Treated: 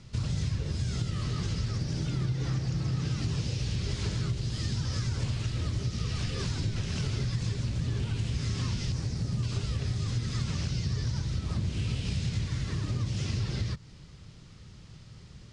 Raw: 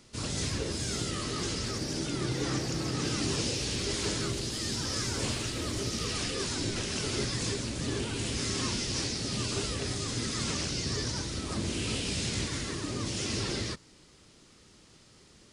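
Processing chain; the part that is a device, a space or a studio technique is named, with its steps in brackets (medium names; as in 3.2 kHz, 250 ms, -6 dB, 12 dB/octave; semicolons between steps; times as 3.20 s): jukebox (low-pass 5.8 kHz 12 dB/octave; resonant low shelf 200 Hz +11.5 dB, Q 1.5; compression 4:1, threshold -30 dBFS, peak gain reduction 12 dB); 8.92–9.43 s: peaking EQ 3.2 kHz -8.5 dB 1.7 oct; trim +1.5 dB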